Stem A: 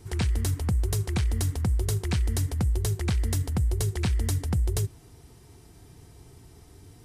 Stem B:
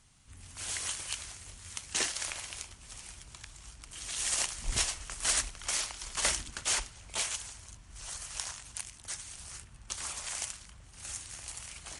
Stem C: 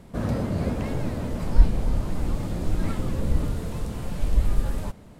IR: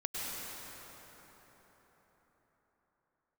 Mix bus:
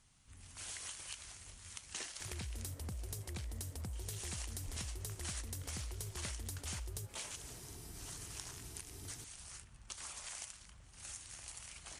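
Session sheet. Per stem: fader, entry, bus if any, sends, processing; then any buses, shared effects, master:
-1.0 dB, 2.20 s, bus A, no send, high shelf 4000 Hz +10.5 dB
-5.5 dB, 0.00 s, no bus, no send, dry
-7.5 dB, 2.40 s, bus A, no send, HPF 370 Hz 12 dB/oct; limiter -30.5 dBFS, peak gain reduction 10 dB
bus A: 0.0 dB, compressor 2:1, threshold -41 dBFS, peak gain reduction 11 dB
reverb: off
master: compressor 2.5:1, threshold -45 dBFS, peak gain reduction 11.5 dB

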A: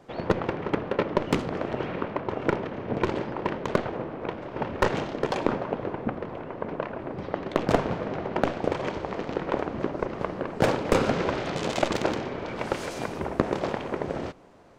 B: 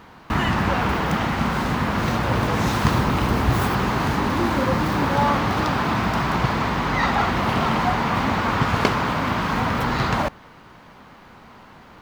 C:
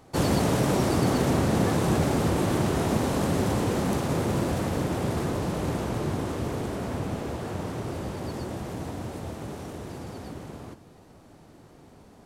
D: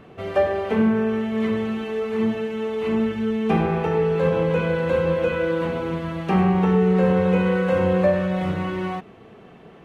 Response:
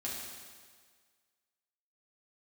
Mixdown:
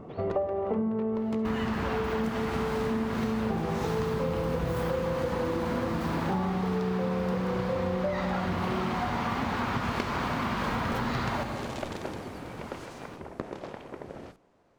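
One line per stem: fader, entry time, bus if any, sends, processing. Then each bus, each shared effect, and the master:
-11.5 dB, 0.00 s, no send, dry
-5.0 dB, 1.15 s, send -5.5 dB, dry
-4.5 dB, 2.10 s, no send, compressor, threshold -29 dBFS, peak gain reduction 10.5 dB
+2.5 dB, 0.00 s, no send, polynomial smoothing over 65 samples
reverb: on, RT60 1.7 s, pre-delay 4 ms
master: compressor 10:1, threshold -26 dBFS, peak gain reduction 15.5 dB

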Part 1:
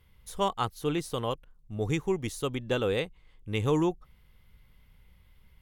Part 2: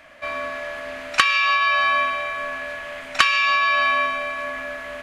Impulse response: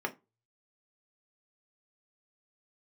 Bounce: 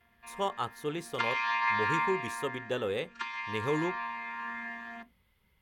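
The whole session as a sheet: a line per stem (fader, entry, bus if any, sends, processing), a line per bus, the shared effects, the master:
-6.0 dB, 0.00 s, send -14 dB, dry
0.92 s -20 dB -> 1.45 s -11.5 dB -> 2.33 s -11.5 dB -> 2.96 s -20 dB -> 3.83 s -20 dB -> 4.49 s -9.5 dB, 0.00 s, send -10.5 dB, chord vocoder bare fifth, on A#3; bell 530 Hz -13.5 dB 0.59 oct; phaser 0.59 Hz, delay 2.4 ms, feedback 21%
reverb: on, RT60 0.25 s, pre-delay 3 ms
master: HPF 100 Hz 6 dB/oct

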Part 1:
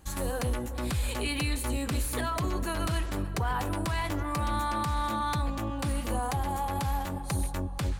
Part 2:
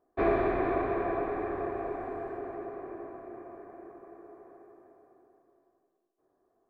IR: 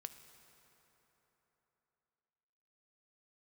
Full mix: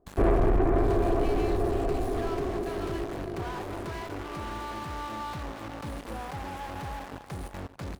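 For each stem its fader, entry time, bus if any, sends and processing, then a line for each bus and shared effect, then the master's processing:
-6.0 dB, 0.00 s, send -11.5 dB, echo send -12 dB, bit-crush 5-bit; HPF 840 Hz 6 dB/oct
+1.5 dB, 0.00 s, no send, no echo send, dry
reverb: on, RT60 3.8 s, pre-delay 3 ms
echo: echo 0.576 s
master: tilt -4.5 dB/oct; soft clip -18 dBFS, distortion -10 dB

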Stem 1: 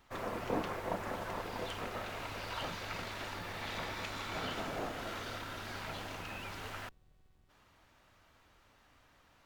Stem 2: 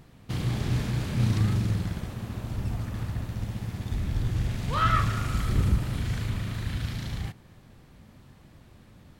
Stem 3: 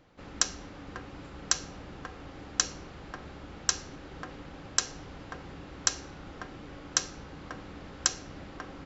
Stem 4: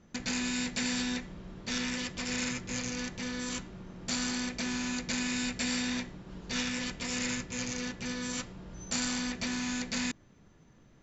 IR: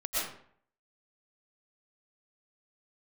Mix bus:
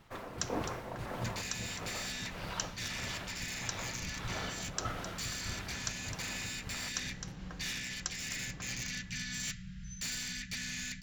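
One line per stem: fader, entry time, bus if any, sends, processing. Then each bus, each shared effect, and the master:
-1.0 dB, 0.00 s, no send, no echo send, tremolo 1.6 Hz, depth 67%
-14.0 dB, 0.00 s, no send, no echo send, step gate "x....x.." 198 bpm -12 dB
-11.5 dB, 0.00 s, no send, echo send -10 dB, dry
-1.5 dB, 1.10 s, no send, no echo send, elliptic band-stop 180–1700 Hz, stop band 40 dB; hard clip -34 dBFS, distortion -11 dB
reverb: off
echo: echo 0.26 s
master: vocal rider within 4 dB 0.5 s

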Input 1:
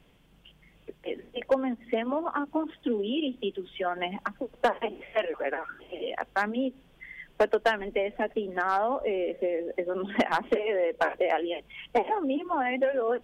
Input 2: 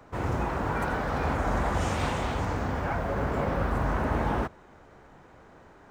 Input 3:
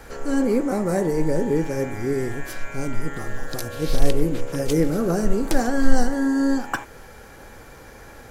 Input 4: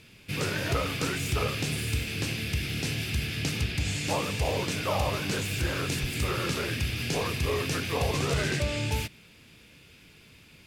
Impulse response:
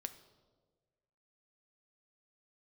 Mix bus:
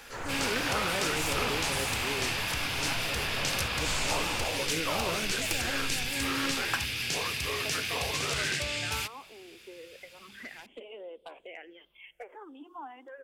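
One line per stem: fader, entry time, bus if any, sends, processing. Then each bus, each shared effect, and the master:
-14.5 dB, 0.25 s, send -10 dB, limiter -19.5 dBFS, peak gain reduction 4 dB; phaser stages 6, 0.3 Hz, lowest notch 140–1900 Hz
-7.5 dB, 0.00 s, no send, dry
-8.5 dB, 0.00 s, no send, compressor, threshold -18 dBFS, peak gain reduction 12.5 dB
-4.0 dB, 0.00 s, no send, dry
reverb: on, RT60 1.5 s, pre-delay 6 ms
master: tilt shelf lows -7.5 dB, about 820 Hz; Doppler distortion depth 0.19 ms

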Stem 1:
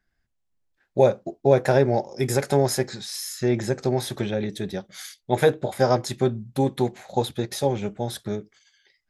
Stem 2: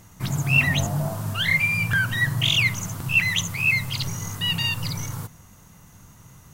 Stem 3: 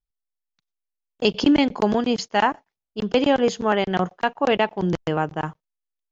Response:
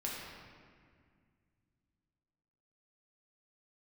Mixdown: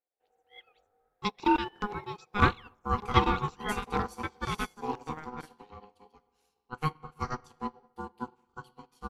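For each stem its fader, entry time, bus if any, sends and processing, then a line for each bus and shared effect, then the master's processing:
-5.5 dB, 1.40 s, send -5 dB, dry
-12.5 dB, 0.00 s, no send, resonant high shelf 4200 Hz -7 dB, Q 1.5
-3.0 dB, 0.00 s, send -15 dB, dry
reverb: on, RT60 2.0 s, pre-delay 5 ms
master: ring modulator 620 Hz; upward expander 2.5:1, over -38 dBFS

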